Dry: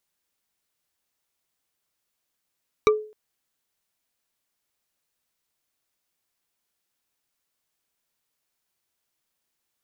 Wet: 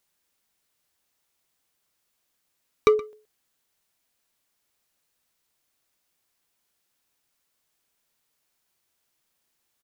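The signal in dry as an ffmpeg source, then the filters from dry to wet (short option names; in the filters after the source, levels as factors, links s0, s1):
-f lavfi -i "aevalsrc='0.266*pow(10,-3*t/0.4)*sin(2*PI*428*t)+0.178*pow(10,-3*t/0.118)*sin(2*PI*1180*t)+0.119*pow(10,-3*t/0.053)*sin(2*PI*2312.9*t)+0.0794*pow(10,-3*t/0.029)*sin(2*PI*3823.3*t)+0.0531*pow(10,-3*t/0.018)*sin(2*PI*5709.5*t)':d=0.26:s=44100"
-filter_complex "[0:a]asplit=2[s0][s1];[s1]volume=14.1,asoftclip=hard,volume=0.0708,volume=0.596[s2];[s0][s2]amix=inputs=2:normalize=0,asplit=2[s3][s4];[s4]adelay=122.4,volume=0.126,highshelf=f=4000:g=-2.76[s5];[s3][s5]amix=inputs=2:normalize=0"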